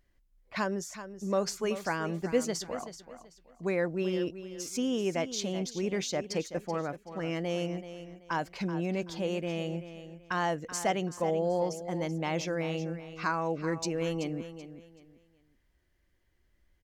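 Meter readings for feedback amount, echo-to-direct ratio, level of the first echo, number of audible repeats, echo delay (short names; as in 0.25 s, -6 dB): 27%, -11.5 dB, -12.0 dB, 3, 0.381 s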